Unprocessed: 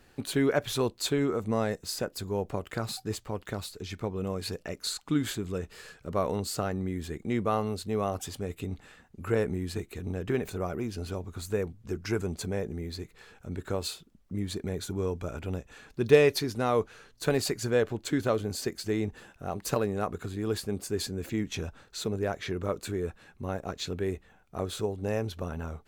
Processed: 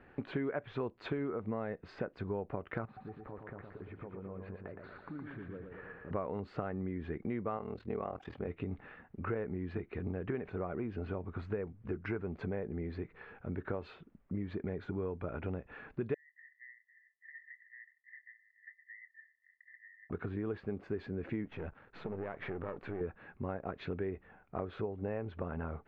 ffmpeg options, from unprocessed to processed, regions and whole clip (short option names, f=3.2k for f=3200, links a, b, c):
-filter_complex "[0:a]asettb=1/sr,asplit=3[a][b][c];[a]atrim=end=2.854[d];[b]atrim=start=2.85:end=6.11,asetpts=PTS-STARTPTS,afade=t=in:d=0.004:c=qsin,afade=t=out:st=3.256:d=0.004:c=qsin,lowpass=1.6k,acompressor=threshold=-47dB:ratio=4:attack=3.2:release=140:knee=1:detection=peak,aecho=1:1:116|232|348|464|580|696|812|928:0.562|0.321|0.183|0.104|0.0594|0.0338|0.0193|0.011,atrim=end_sample=143766[e];[c]atrim=start=6.106[f];[d][e]acrossfade=d=0.004:c1=hsin:c2=qsin[g];[g][f]acrossfade=d=0.004:c1=qsin:c2=hsin,asettb=1/sr,asplit=3[h][i][j];[h]atrim=end=7.574[k];[i]atrim=start=7.57:end=8.47,asetpts=PTS-STARTPTS,afade=t=in:d=0.004:c=qsin,afade=t=out:st=0.896:d=0.004:c=qsin,bass=f=250:g=-3,treble=f=4k:g=2,aeval=exprs='val(0)*sin(2*PI*20*n/s)':c=same[l];[j]atrim=start=8.466[m];[k][l]acrossfade=d=0.004:c1=hsin:c2=qsin[n];[n][m]acrossfade=d=0.004:c1=qsin:c2=hsin,asettb=1/sr,asplit=3[o][p][q];[o]atrim=end=16.144[r];[p]atrim=start=16.14:end=20.1,asetpts=PTS-STARTPTS,afade=t=in:d=0.004:c=qsin,afade=t=out:st=3.956:d=0.004:c=qsin,asuperpass=centerf=1900:order=12:qfactor=7,acompressor=threshold=-49dB:ratio=6:attack=3.2:release=140:knee=1:detection=peak,asplit=2[s][t];[t]adelay=26,volume=-11dB[u];[s][u]amix=inputs=2:normalize=0,atrim=end_sample=174636[v];[q]atrim=start=20.096[w];[r][v]acrossfade=d=0.004:c1=hsin:c2=qsin[x];[x][w]acrossfade=d=0.004:c1=qsin:c2=hsin,asettb=1/sr,asplit=3[y][z][aa];[y]atrim=end=21.454[ab];[z]atrim=start=21.45:end=23.01,asetpts=PTS-STARTPTS,afade=t=in:d=0.004:c=qsin,afade=t=out:st=1.556:d=0.004:c=qsin,aeval=exprs='if(lt(val(0),0),0.251*val(0),val(0))':c=same,acompressor=threshold=-34dB:ratio=6:attack=3.2:release=140:knee=1:detection=peak[ac];[aa]atrim=start=23.006[ad];[ab][ac]acrossfade=d=0.004:c1=hsin:c2=qsin[ae];[ae][ad]acrossfade=d=0.004:c1=qsin:c2=hsin,lowpass=f=2.2k:w=0.5412,lowpass=f=2.2k:w=1.3066,lowshelf=f=71:g=-9,acompressor=threshold=-37dB:ratio=5,volume=2.5dB"